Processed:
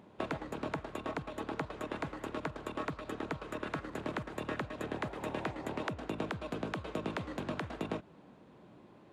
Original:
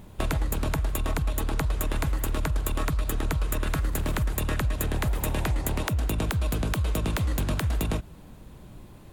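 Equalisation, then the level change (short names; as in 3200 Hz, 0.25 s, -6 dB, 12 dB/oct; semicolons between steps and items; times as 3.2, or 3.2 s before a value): HPF 250 Hz 12 dB/oct; tape spacing loss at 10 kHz 24 dB; -2.5 dB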